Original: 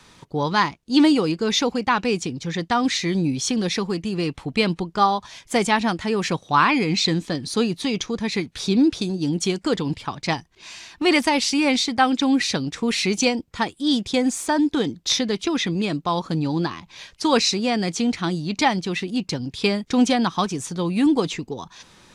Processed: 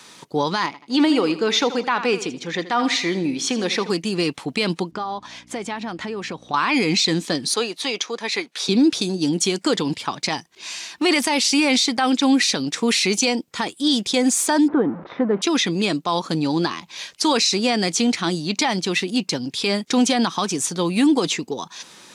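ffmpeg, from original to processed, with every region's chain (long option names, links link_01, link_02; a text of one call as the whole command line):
ffmpeg -i in.wav -filter_complex "[0:a]asettb=1/sr,asplit=3[link_01][link_02][link_03];[link_01]atrim=end=0.664[link_04];[link_02]atrim=start=0.66:end=3.9,asetpts=PTS-STARTPTS,afade=type=in:duration=0.004:curve=qsin,afade=type=out:start_time=3.236:duration=0.004:curve=qsin,bass=frequency=250:gain=-7,treble=frequency=4000:gain=-11,aecho=1:1:80|160|240|320:0.188|0.0791|0.0332|0.014,atrim=end_sample=142884[link_05];[link_03]atrim=start=3.896[link_06];[link_04][link_05]acrossfade=duration=0.004:curve1=hsin:curve2=qsin[link_07];[link_07][link_06]acrossfade=duration=0.004:curve1=qsin:curve2=hsin,asettb=1/sr,asplit=3[link_08][link_09][link_10];[link_08]atrim=end=4.914[link_11];[link_09]atrim=start=4.91:end=6.54,asetpts=PTS-STARTPTS,afade=type=in:duration=0.004:curve=qsin,afade=type=out:start_time=1.626:duration=0.004:curve=qsin,acompressor=threshold=-28dB:ratio=8:attack=3.2:release=140:knee=1:detection=peak,aemphasis=mode=reproduction:type=75fm,aeval=exprs='val(0)+0.00562*(sin(2*PI*60*n/s)+sin(2*PI*2*60*n/s)/2+sin(2*PI*3*60*n/s)/3+sin(2*PI*4*60*n/s)/4+sin(2*PI*5*60*n/s)/5)':channel_layout=same[link_12];[link_10]atrim=start=6.536[link_13];[link_11][link_12]acrossfade=duration=0.004:curve1=hsin:curve2=qsin[link_14];[link_14][link_13]acrossfade=duration=0.004:curve1=qsin:curve2=hsin,asettb=1/sr,asplit=3[link_15][link_16][link_17];[link_15]atrim=end=7.544[link_18];[link_16]atrim=start=7.54:end=8.69,asetpts=PTS-STARTPTS,afade=type=in:duration=0.004:curve=qsin,afade=type=out:start_time=1.146:duration=0.004:curve=qsin,highpass=470,highshelf=frequency=5100:gain=-8.5[link_19];[link_17]atrim=start=8.686[link_20];[link_18][link_19]acrossfade=duration=0.004:curve1=hsin:curve2=qsin[link_21];[link_21][link_20]acrossfade=duration=0.004:curve1=qsin:curve2=hsin,asettb=1/sr,asplit=3[link_22][link_23][link_24];[link_22]atrim=end=14.684[link_25];[link_23]atrim=start=14.68:end=15.42,asetpts=PTS-STARTPTS,afade=type=in:duration=0.004:curve=qsin,afade=type=out:start_time=0.736:duration=0.004:curve=qsin,aeval=exprs='val(0)+0.5*0.0299*sgn(val(0))':channel_layout=same,lowpass=frequency=1400:width=0.5412,lowpass=frequency=1400:width=1.3066[link_26];[link_24]atrim=start=15.416[link_27];[link_25][link_26]acrossfade=duration=0.004:curve1=hsin:curve2=qsin[link_28];[link_28][link_27]acrossfade=duration=0.004:curve1=qsin:curve2=hsin,highpass=210,highshelf=frequency=3800:gain=7,alimiter=level_in=12.5dB:limit=-1dB:release=50:level=0:latency=1,volume=-8.5dB" out.wav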